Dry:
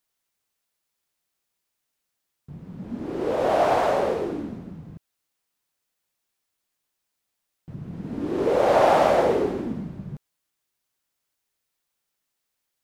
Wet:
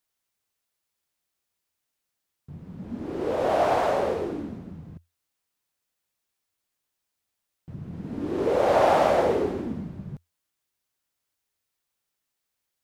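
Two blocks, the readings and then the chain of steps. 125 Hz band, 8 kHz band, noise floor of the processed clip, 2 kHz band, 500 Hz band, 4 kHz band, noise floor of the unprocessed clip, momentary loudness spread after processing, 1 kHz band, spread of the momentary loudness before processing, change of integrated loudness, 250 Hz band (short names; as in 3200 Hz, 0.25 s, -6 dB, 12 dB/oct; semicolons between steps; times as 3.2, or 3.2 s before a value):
-1.0 dB, n/a, -82 dBFS, -2.0 dB, -2.0 dB, -2.0 dB, -80 dBFS, 21 LU, -2.0 dB, 21 LU, -2.0 dB, -2.0 dB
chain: bell 85 Hz +7.5 dB 0.27 oct; gain -2 dB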